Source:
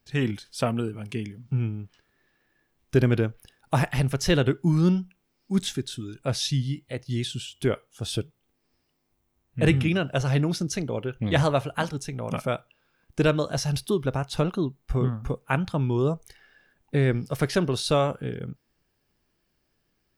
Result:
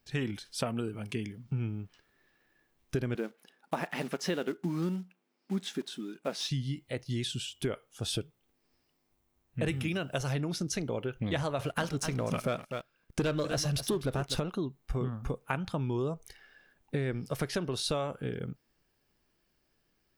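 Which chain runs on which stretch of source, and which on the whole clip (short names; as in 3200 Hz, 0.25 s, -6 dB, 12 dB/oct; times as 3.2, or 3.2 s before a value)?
3.15–6.51 block floating point 5-bit + brick-wall FIR high-pass 160 Hz + high shelf 4300 Hz -10.5 dB
9.68–10.33 high shelf 7100 Hz +11 dB + short-mantissa float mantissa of 6-bit
11.59–14.4 bell 860 Hz -4.5 dB 0.4 oct + echo 0.25 s -14.5 dB + sample leveller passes 2
whole clip: bell 98 Hz -3 dB 2.3 oct; compressor 5:1, threshold -28 dBFS; gain -1 dB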